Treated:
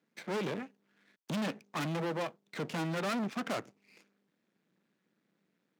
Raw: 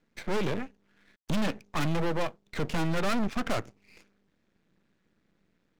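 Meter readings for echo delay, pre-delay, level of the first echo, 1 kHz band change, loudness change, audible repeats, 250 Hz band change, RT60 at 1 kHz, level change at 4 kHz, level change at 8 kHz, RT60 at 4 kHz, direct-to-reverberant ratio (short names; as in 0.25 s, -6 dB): none, none, none, -4.5 dB, -5.0 dB, none, -5.0 dB, none, -4.5 dB, -4.5 dB, none, none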